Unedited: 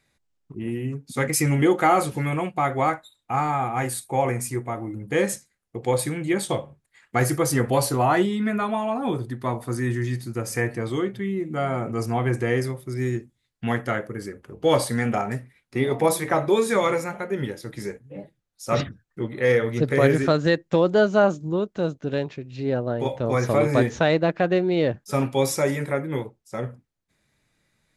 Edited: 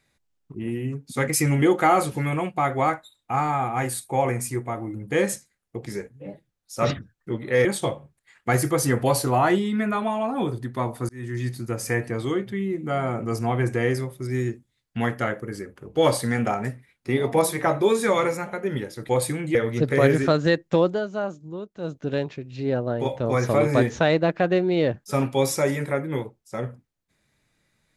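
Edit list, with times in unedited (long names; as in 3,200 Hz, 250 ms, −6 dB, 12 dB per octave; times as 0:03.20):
0:05.86–0:06.32: swap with 0:17.76–0:19.55
0:09.76–0:10.14: fade in linear
0:20.83–0:21.97: duck −10 dB, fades 0.17 s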